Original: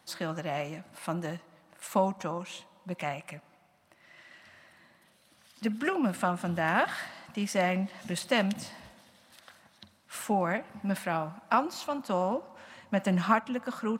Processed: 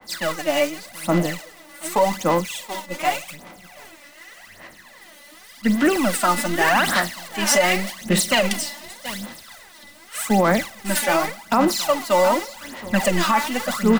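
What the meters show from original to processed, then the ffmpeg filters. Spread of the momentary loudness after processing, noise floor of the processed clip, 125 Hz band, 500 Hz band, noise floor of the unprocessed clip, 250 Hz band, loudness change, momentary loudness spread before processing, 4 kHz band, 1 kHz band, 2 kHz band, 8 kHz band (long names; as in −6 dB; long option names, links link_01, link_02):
14 LU, −47 dBFS, +7.0 dB, +11.0 dB, −64 dBFS, +9.0 dB, +10.5 dB, 15 LU, +15.0 dB, +9.5 dB, +11.5 dB, +18.5 dB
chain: -filter_complex "[0:a]aeval=exprs='val(0)+0.5*0.0168*sgn(val(0))':channel_layout=same,aecho=1:1:45|727:0.126|0.282,acrossover=split=150|930|1900[link_01][link_02][link_03][link_04];[link_01]aeval=exprs='max(val(0),0)':channel_layout=same[link_05];[link_05][link_02][link_03][link_04]amix=inputs=4:normalize=0,aeval=exprs='val(0)+0.00562*sin(2*PI*2000*n/s)':channel_layout=same,equalizer=frequency=140:width_type=o:width=0.33:gain=-8,agate=range=-33dB:threshold=-28dB:ratio=3:detection=peak,aphaser=in_gain=1:out_gain=1:delay=3.5:decay=0.7:speed=0.86:type=sinusoidal,alimiter=level_in=15.5dB:limit=-1dB:release=50:level=0:latency=1,adynamicequalizer=threshold=0.0355:dfrequency=2900:dqfactor=0.7:tfrequency=2900:tqfactor=0.7:attack=5:release=100:ratio=0.375:range=3.5:mode=boostabove:tftype=highshelf,volume=-7.5dB"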